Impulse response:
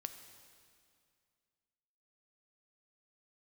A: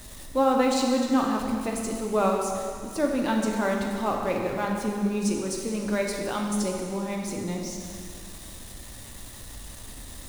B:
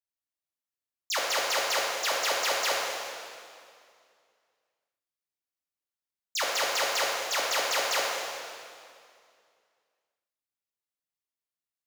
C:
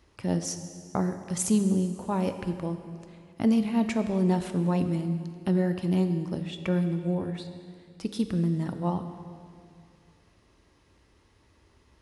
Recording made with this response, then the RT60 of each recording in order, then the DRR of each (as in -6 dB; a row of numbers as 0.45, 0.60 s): C; 2.3, 2.3, 2.3 s; 0.0, -4.5, 7.5 dB